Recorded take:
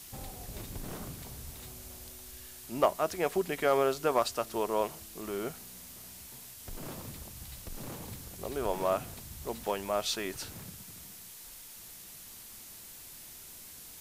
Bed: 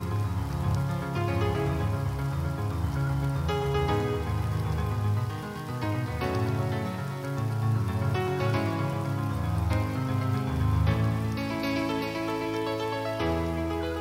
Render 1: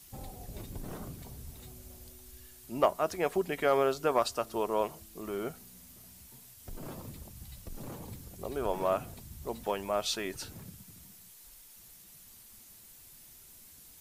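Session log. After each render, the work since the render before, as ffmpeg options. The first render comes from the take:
-af "afftdn=nr=8:nf=-49"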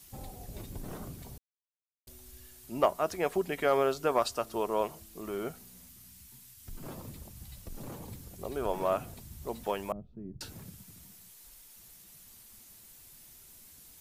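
-filter_complex "[0:a]asettb=1/sr,asplit=3[a][b][c];[a]atrim=end=5.894[d];[b]atrim=start=5.89:end=6.84,asetpts=PTS-STARTPTS,afade=t=in:d=0.004:c=qsin,afade=t=out:st=0.946:d=0.004:c=qsin,equalizer=f=560:w=1.1:g=-13.5[e];[c]atrim=start=6.836[f];[d][e]acrossfade=d=0.004:c1=hsin:c2=qsin[g];[g][f]acrossfade=d=0.004:c1=qsin:c2=hsin,asettb=1/sr,asplit=3[h][i][j];[h]atrim=end=9.924[k];[i]atrim=start=9.92:end=10.41,asetpts=PTS-STARTPTS,afade=t=in:d=0.004:c=qsin,afade=t=out:st=0.486:d=0.004:c=qsin,lowpass=f=180:t=q:w=1.7[l];[j]atrim=start=10.406[m];[k][l]acrossfade=d=0.004:c1=hsin:c2=qsin[n];[n][m]acrossfade=d=0.004:c1=qsin:c2=hsin,asplit=3[o][p][q];[o]atrim=end=1.38,asetpts=PTS-STARTPTS,afade=t=out:st=1.376:d=0.004:c=hsin[r];[p]atrim=start=1.38:end=2.07,asetpts=PTS-STARTPTS,volume=0[s];[q]atrim=start=2.07,asetpts=PTS-STARTPTS,afade=t=in:d=0.004:c=hsin[t];[r][s][t]concat=n=3:v=0:a=1"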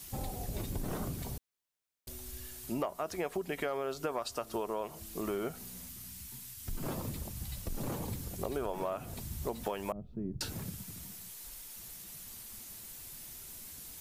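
-filter_complex "[0:a]asplit=2[a][b];[b]alimiter=limit=-22.5dB:level=0:latency=1,volume=1dB[c];[a][c]amix=inputs=2:normalize=0,acompressor=threshold=-32dB:ratio=8"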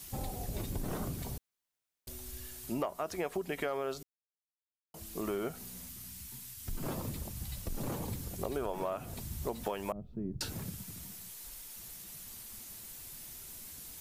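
-filter_complex "[0:a]asplit=3[a][b][c];[a]atrim=end=4.03,asetpts=PTS-STARTPTS,afade=t=out:st=4.026:d=0.004:c=hsin[d];[b]atrim=start=4.03:end=4.94,asetpts=PTS-STARTPTS,volume=0[e];[c]atrim=start=4.94,asetpts=PTS-STARTPTS,afade=t=in:d=0.004:c=hsin[f];[d][e][f]concat=n=3:v=0:a=1"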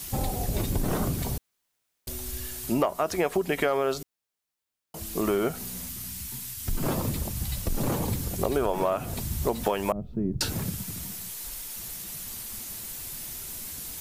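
-af "volume=10dB"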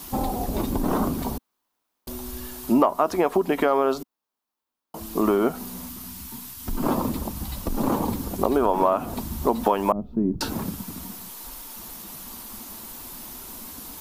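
-af "equalizer=f=125:t=o:w=1:g=-8,equalizer=f=250:t=o:w=1:g=10,equalizer=f=1k:t=o:w=1:g=10,equalizer=f=2k:t=o:w=1:g=-4,equalizer=f=8k:t=o:w=1:g=-5"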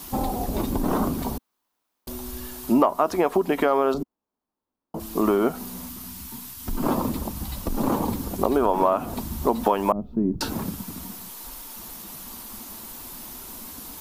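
-filter_complex "[0:a]asettb=1/sr,asplit=3[a][b][c];[a]atrim=end=3.944[d];[b]atrim=start=3.94:end=5,asetpts=PTS-STARTPTS,afade=t=in:d=0.004:c=qsin,afade=t=out:st=1.056:d=0.004:c=qsin,tiltshelf=f=970:g=9.5[e];[c]atrim=start=4.996[f];[d][e]acrossfade=d=0.004:c1=hsin:c2=qsin[g];[g][f]acrossfade=d=0.004:c1=qsin:c2=hsin"

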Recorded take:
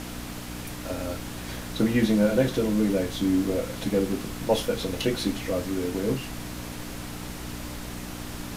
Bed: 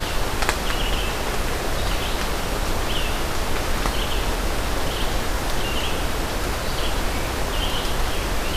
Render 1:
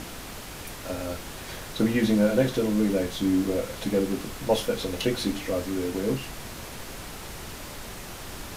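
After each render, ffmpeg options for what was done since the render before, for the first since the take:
-af "bandreject=f=60:t=h:w=4,bandreject=f=120:t=h:w=4,bandreject=f=180:t=h:w=4,bandreject=f=240:t=h:w=4,bandreject=f=300:t=h:w=4"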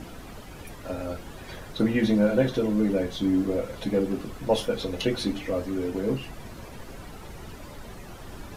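-af "afftdn=nr=11:nf=-40"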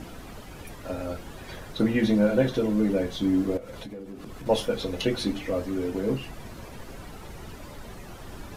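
-filter_complex "[0:a]asettb=1/sr,asplit=3[a][b][c];[a]atrim=end=3.574[d];[b]atrim=start=3.57:end=4.46,asetpts=PTS-STARTPTS,afade=t=in:d=0.004:c=qsin,afade=t=out:st=0.886:d=0.004:c=qsin,acompressor=threshold=-35dB:ratio=12:attack=3.2:release=140:knee=1:detection=peak[e];[c]atrim=start=4.456[f];[d][e]acrossfade=d=0.004:c1=hsin:c2=qsin[g];[g][f]acrossfade=d=0.004:c1=qsin:c2=hsin"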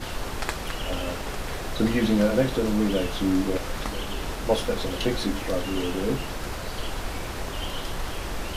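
-filter_complex "[1:a]volume=-8.5dB[a];[0:a][a]amix=inputs=2:normalize=0"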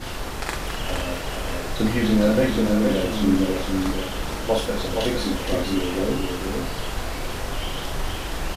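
-filter_complex "[0:a]asplit=2[a][b];[b]adelay=42,volume=-3.5dB[c];[a][c]amix=inputs=2:normalize=0,aecho=1:1:467:0.596"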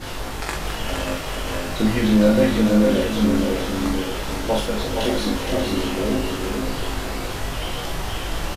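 -filter_complex "[0:a]asplit=2[a][b];[b]adelay=19,volume=-5dB[c];[a][c]amix=inputs=2:normalize=0,aecho=1:1:588:0.398"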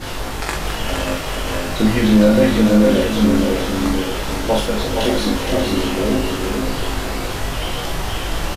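-af "volume=4dB,alimiter=limit=-3dB:level=0:latency=1"

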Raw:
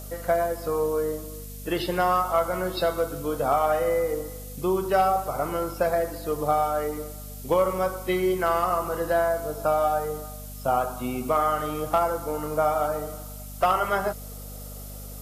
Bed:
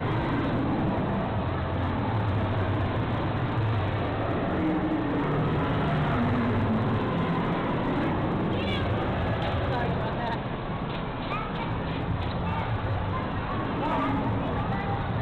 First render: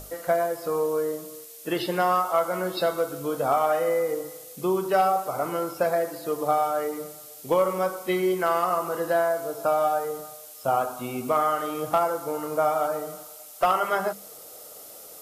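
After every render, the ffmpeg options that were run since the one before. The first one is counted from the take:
-af "bandreject=f=50:t=h:w=6,bandreject=f=100:t=h:w=6,bandreject=f=150:t=h:w=6,bandreject=f=200:t=h:w=6,bandreject=f=250:t=h:w=6"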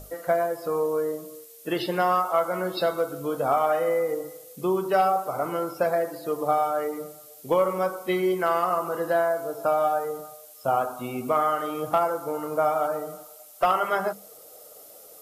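-af "afftdn=nr=6:nf=-45"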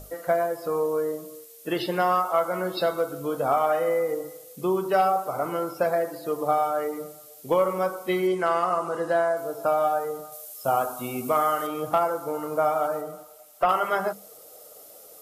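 -filter_complex "[0:a]asettb=1/sr,asplit=3[a][b][c];[a]atrim=end=8.274[d];[b]atrim=start=8.27:end=9.37,asetpts=PTS-STARTPTS,afade=t=in:d=0.004:c=qsin,afade=t=out:st=1.096:d=0.004:c=qsin,lowpass=f=10k:w=0.5412,lowpass=f=10k:w=1.3066[e];[c]atrim=start=9.366[f];[d][e]acrossfade=d=0.004:c1=hsin:c2=qsin[g];[g][f]acrossfade=d=0.004:c1=qsin:c2=hsin,asettb=1/sr,asplit=3[h][i][j];[h]atrim=end=10.324[k];[i]atrim=start=10.32:end=11.67,asetpts=PTS-STARTPTS,afade=t=in:d=0.004:c=qsin,afade=t=out:st=1.346:d=0.004:c=qsin,highshelf=f=5.1k:g=8.5[l];[j]atrim=start=11.666[m];[k][l]acrossfade=d=0.004:c1=hsin:c2=qsin[n];[n][m]acrossfade=d=0.004:c1=qsin:c2=hsin,asettb=1/sr,asplit=3[o][p][q];[o]atrim=end=13.014[r];[p]atrim=start=13.01:end=13.69,asetpts=PTS-STARTPTS,afade=t=in:d=0.004:c=qsin,afade=t=out:st=0.676:d=0.004:c=qsin,acrossover=split=2800[s][t];[t]acompressor=threshold=-49dB:ratio=4:attack=1:release=60[u];[s][u]amix=inputs=2:normalize=0[v];[q]atrim=start=13.686[w];[r][v]acrossfade=d=0.004:c1=hsin:c2=qsin[x];[x][w]acrossfade=d=0.004:c1=qsin:c2=hsin"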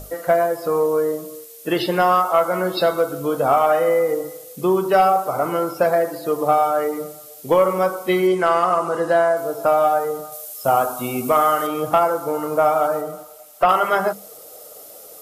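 -af "acontrast=75"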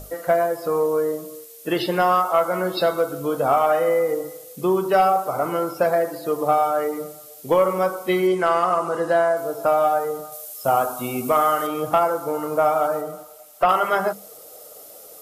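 -af "volume=-2dB"

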